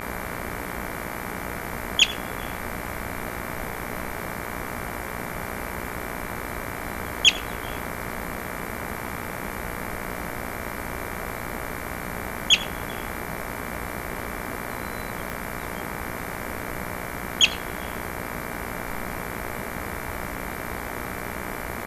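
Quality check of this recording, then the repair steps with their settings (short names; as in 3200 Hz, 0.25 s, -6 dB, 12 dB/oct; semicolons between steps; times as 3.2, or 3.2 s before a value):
buzz 60 Hz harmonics 39 -35 dBFS
15.3 pop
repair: de-click; de-hum 60 Hz, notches 39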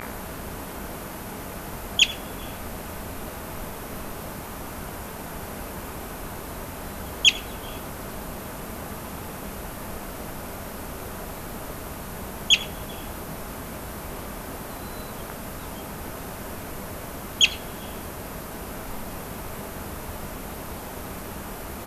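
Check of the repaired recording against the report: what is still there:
none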